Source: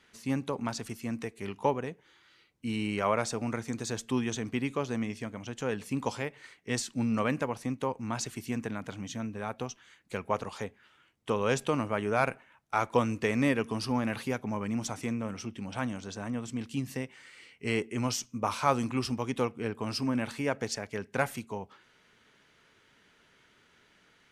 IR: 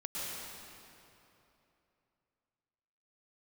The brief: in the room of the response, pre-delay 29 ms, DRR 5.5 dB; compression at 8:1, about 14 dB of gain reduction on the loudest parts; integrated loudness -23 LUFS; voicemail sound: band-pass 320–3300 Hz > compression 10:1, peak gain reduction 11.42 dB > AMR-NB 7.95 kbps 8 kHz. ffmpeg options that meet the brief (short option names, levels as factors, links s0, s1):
-filter_complex "[0:a]acompressor=threshold=0.02:ratio=8,asplit=2[s0][s1];[1:a]atrim=start_sample=2205,adelay=29[s2];[s1][s2]afir=irnorm=-1:irlink=0,volume=0.376[s3];[s0][s3]amix=inputs=2:normalize=0,highpass=320,lowpass=3300,acompressor=threshold=0.00794:ratio=10,volume=18.8" -ar 8000 -c:a libopencore_amrnb -b:a 7950